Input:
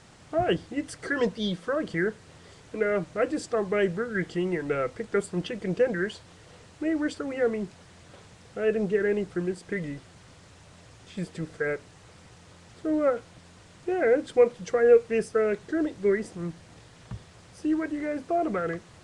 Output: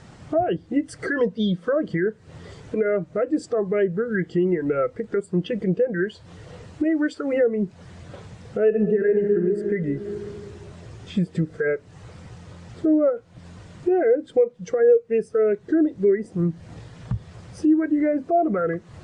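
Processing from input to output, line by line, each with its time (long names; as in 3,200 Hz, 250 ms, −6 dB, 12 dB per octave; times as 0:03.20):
0:06.84–0:07.33: low-shelf EQ 390 Hz −8.5 dB
0:08.67–0:09.39: thrown reverb, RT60 2.7 s, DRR 3.5 dB
whole clip: downward compressor 4 to 1, threshold −39 dBFS; boost into a limiter +30 dB; every bin expanded away from the loudest bin 1.5 to 1; level −8 dB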